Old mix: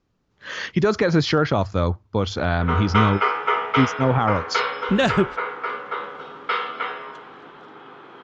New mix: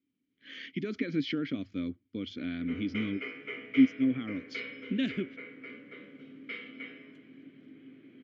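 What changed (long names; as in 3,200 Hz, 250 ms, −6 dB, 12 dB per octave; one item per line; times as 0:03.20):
background: remove loudspeaker in its box 310–6,100 Hz, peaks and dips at 610 Hz −8 dB, 1,300 Hz +8 dB, 3,400 Hz +9 dB
master: add formant filter i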